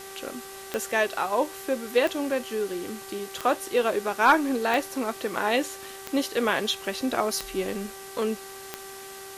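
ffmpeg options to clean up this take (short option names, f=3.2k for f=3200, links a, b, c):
-af "adeclick=t=4,bandreject=f=388.9:t=h:w=4,bandreject=f=777.8:t=h:w=4,bandreject=f=1.1667k:t=h:w=4,bandreject=f=1.5556k:t=h:w=4,bandreject=f=1.9445k:t=h:w=4,afwtdn=0.0071"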